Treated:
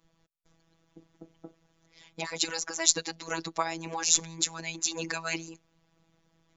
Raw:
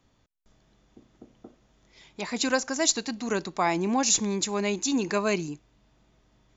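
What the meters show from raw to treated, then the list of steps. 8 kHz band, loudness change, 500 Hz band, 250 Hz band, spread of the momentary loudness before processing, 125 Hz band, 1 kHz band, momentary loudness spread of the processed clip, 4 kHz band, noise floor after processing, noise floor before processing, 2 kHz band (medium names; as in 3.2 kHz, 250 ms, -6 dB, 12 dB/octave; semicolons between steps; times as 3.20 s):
no reading, -2.5 dB, -10.0 dB, -12.5 dB, 9 LU, -7.0 dB, -6.0 dB, 11 LU, 0.0 dB, -71 dBFS, -66 dBFS, -3.0 dB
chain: harmonic-percussive split harmonic -16 dB; robot voice 164 Hz; trim +3.5 dB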